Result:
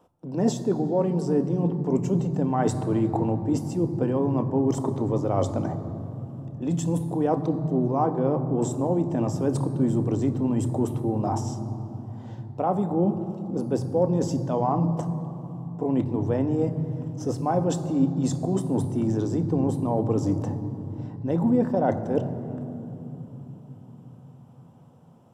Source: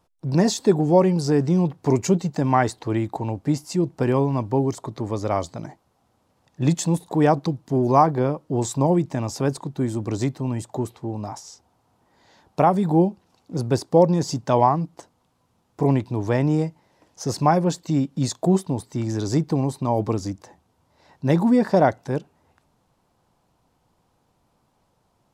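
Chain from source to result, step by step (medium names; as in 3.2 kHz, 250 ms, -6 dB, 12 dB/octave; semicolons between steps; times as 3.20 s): high-order bell 3.3 kHz -10 dB 2.4 oct; reverse; compression 10:1, threshold -29 dBFS, peak gain reduction 19 dB; reverse; reverberation RT60 3.5 s, pre-delay 3 ms, DRR 8.5 dB; trim +2.5 dB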